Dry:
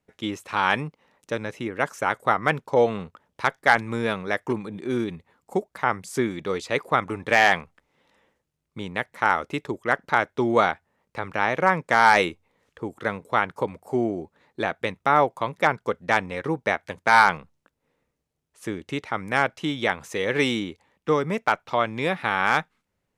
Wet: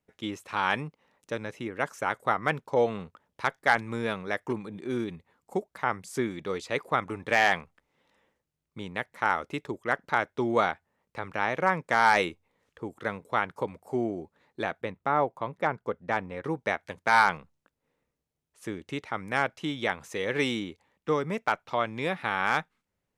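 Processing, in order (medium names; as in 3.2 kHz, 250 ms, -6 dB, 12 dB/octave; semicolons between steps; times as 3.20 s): 14.81–16.44 s: treble shelf 2.4 kHz -11.5 dB; trim -5 dB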